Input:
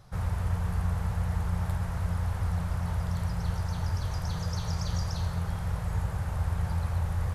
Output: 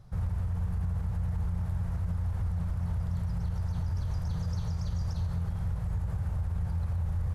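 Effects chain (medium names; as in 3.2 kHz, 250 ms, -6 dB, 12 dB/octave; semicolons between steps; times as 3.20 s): bass shelf 360 Hz +11.5 dB; peak limiter -16.5 dBFS, peak gain reduction 8.5 dB; trim -8 dB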